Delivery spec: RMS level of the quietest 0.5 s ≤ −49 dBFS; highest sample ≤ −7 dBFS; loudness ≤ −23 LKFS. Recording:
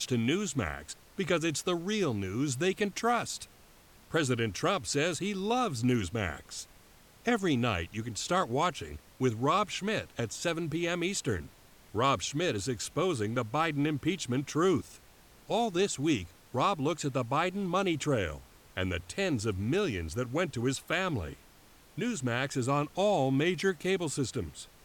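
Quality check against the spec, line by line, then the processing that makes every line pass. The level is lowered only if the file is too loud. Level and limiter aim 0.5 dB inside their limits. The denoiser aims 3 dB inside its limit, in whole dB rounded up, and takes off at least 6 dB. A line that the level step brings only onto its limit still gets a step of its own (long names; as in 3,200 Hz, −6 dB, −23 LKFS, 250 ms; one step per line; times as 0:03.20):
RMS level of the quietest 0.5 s −58 dBFS: in spec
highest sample −16.0 dBFS: in spec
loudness −31.0 LKFS: in spec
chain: no processing needed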